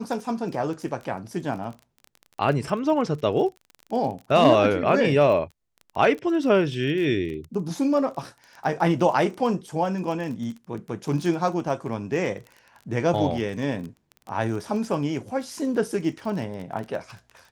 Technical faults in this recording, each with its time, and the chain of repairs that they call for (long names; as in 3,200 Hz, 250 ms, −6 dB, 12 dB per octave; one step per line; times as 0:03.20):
surface crackle 22 per second −32 dBFS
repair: click removal